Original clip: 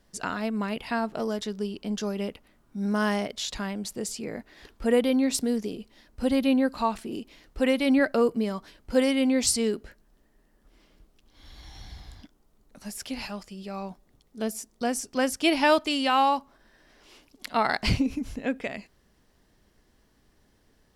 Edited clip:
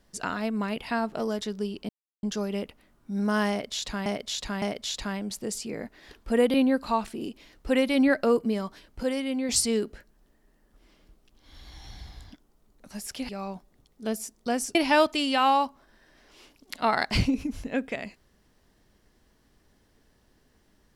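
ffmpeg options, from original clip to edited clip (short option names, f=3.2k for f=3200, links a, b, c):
-filter_complex "[0:a]asplit=9[a][b][c][d][e][f][g][h][i];[a]atrim=end=1.89,asetpts=PTS-STARTPTS,afade=t=out:st=1.886:d=0.004:c=hsin,apad=pad_dur=0.34[j];[b]atrim=start=1.89:end=3.722,asetpts=PTS-STARTPTS,afade=t=in:d=0.004:c=hsin[k];[c]atrim=start=3.158:end=3.722[l];[d]atrim=start=3.158:end=5.082[m];[e]atrim=start=6.448:end=8.942[n];[f]atrim=start=8.938:end=9.402,asetpts=PTS-STARTPTS,volume=-6dB[o];[g]atrim=start=9.398:end=13.202[p];[h]atrim=start=13.638:end=15.102[q];[i]atrim=start=15.468[r];[j][k]concat=n=2:v=0:a=1[s];[s][l]acrossfade=d=0.004:c1=hsin:c2=hsin[t];[t][m]acrossfade=d=0.004:c1=hsin:c2=hsin[u];[u][n]acrossfade=d=0.004:c1=hsin:c2=hsin[v];[v][o]acrossfade=d=0.004:c1=hsin:c2=hsin[w];[w][p]acrossfade=d=0.004:c1=hsin:c2=hsin[x];[x][q]acrossfade=d=0.004:c1=hsin:c2=hsin[y];[y][r]acrossfade=d=0.004:c1=hsin:c2=hsin"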